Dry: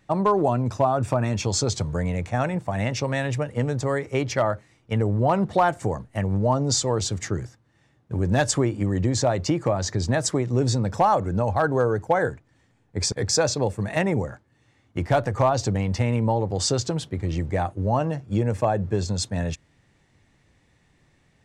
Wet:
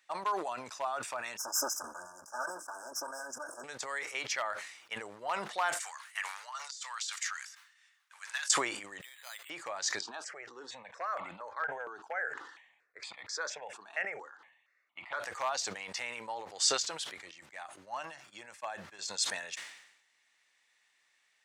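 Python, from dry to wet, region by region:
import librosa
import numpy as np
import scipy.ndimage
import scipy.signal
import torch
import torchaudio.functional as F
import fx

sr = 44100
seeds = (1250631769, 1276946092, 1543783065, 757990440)

y = fx.chain(x, sr, fx.lower_of_two(delay_ms=3.3),
    fx.filter_lfo_notch(shape='sine', hz=8.0, low_hz=310.0, high_hz=2400.0, q=2.5),
    fx.brickwall_bandstop(low_hz=1700.0, high_hz=4900.0), at=(1.37, 3.64))
y = fx.chain(y, sr, fx.cheby2_highpass(hz=190.0, order=4, stop_db=80),
    fx.over_compress(threshold_db=-33.0, ratio=-0.5), at=(5.8, 8.5))
y = fx.chain(y, sr, fx.bessel_highpass(hz=2300.0, order=2),
    fx.resample_bad(factor=8, down='filtered', up='hold'), at=(9.01, 9.5))
y = fx.chain(y, sr, fx.bandpass_edges(low_hz=150.0, high_hz=3200.0),
    fx.phaser_held(hz=4.3, low_hz=540.0, high_hz=1600.0), at=(10.01, 15.2))
y = fx.chain(y, sr, fx.peak_eq(hz=450.0, db=-10.5, octaves=0.33),
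    fx.upward_expand(threshold_db=-33.0, expansion=2.5), at=(17.31, 18.99))
y = scipy.signal.sosfilt(scipy.signal.butter(2, 1500.0, 'highpass', fs=sr, output='sos'), y)
y = fx.sustainer(y, sr, db_per_s=69.0)
y = y * 10.0 ** (-2.5 / 20.0)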